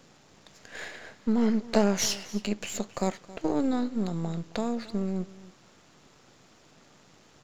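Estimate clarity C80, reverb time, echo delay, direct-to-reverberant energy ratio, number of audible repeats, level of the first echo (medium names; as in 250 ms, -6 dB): no reverb, no reverb, 270 ms, no reverb, 1, -19.0 dB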